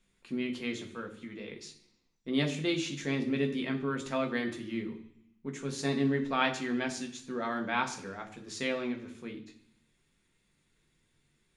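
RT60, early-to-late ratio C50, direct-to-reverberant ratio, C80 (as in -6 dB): 0.70 s, 11.5 dB, 3.0 dB, 14.5 dB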